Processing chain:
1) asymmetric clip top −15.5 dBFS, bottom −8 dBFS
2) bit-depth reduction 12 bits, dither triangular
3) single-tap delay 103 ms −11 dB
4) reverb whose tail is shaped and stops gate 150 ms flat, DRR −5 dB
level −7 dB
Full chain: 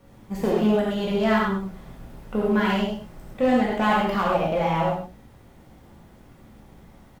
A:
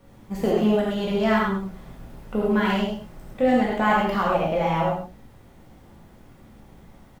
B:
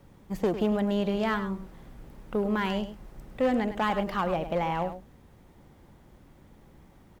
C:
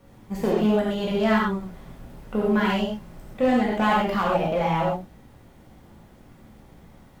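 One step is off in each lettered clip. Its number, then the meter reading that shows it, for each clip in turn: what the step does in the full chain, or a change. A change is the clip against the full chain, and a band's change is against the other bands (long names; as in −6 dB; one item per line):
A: 1, distortion level −19 dB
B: 4, change in integrated loudness −6.0 LU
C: 3, change in momentary loudness spread −2 LU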